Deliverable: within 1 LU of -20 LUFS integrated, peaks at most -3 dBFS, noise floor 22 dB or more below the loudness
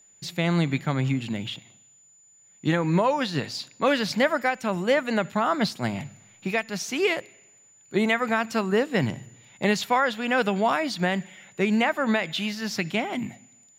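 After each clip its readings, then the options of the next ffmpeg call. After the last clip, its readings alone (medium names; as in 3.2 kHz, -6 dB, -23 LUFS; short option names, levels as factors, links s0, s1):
steady tone 7 kHz; tone level -54 dBFS; loudness -25.5 LUFS; peak level -10.5 dBFS; loudness target -20.0 LUFS
-> -af "bandreject=f=7000:w=30"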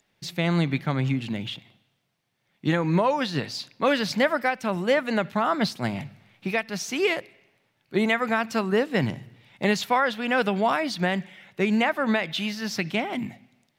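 steady tone not found; loudness -25.5 LUFS; peak level -10.5 dBFS; loudness target -20.0 LUFS
-> -af "volume=1.88"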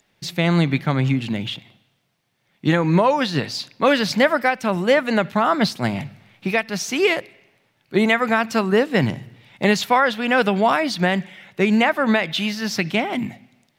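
loudness -20.0 LUFS; peak level -5.0 dBFS; noise floor -67 dBFS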